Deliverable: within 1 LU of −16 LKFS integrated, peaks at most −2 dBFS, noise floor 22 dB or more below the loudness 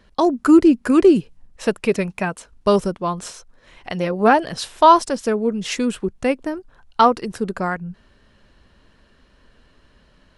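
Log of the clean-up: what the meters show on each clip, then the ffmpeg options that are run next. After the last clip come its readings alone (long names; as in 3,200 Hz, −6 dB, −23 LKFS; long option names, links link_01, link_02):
integrated loudness −18.5 LKFS; sample peak −1.5 dBFS; target loudness −16.0 LKFS
→ -af "volume=2.5dB,alimiter=limit=-2dB:level=0:latency=1"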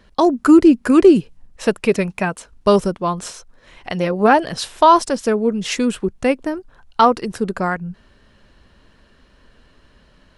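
integrated loudness −16.5 LKFS; sample peak −2.0 dBFS; background noise floor −54 dBFS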